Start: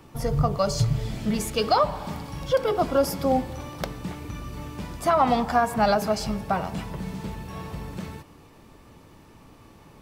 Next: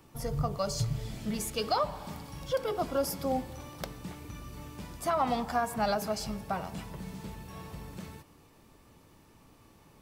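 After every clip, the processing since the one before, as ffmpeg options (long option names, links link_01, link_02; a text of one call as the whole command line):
ffmpeg -i in.wav -af "highshelf=frequency=5400:gain=7,volume=-8.5dB" out.wav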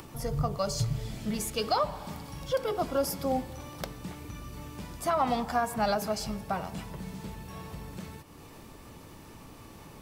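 ffmpeg -i in.wav -af "acompressor=mode=upward:threshold=-40dB:ratio=2.5,volume=1.5dB" out.wav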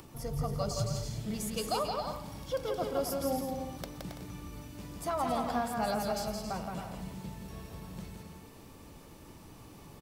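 ffmpeg -i in.wav -filter_complex "[0:a]equalizer=frequency=1600:width=0.66:gain=-3,asplit=2[link_01][link_02];[link_02]aecho=0:1:170|272|333.2|369.9|392:0.631|0.398|0.251|0.158|0.1[link_03];[link_01][link_03]amix=inputs=2:normalize=0,volume=-4.5dB" out.wav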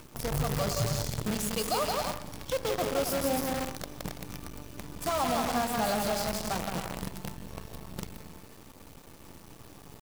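ffmpeg -i in.wav -filter_complex "[0:a]asplit=2[link_01][link_02];[link_02]alimiter=level_in=6.5dB:limit=-24dB:level=0:latency=1:release=73,volume=-6.5dB,volume=-2.5dB[link_03];[link_01][link_03]amix=inputs=2:normalize=0,acrusher=bits=6:dc=4:mix=0:aa=0.000001" out.wav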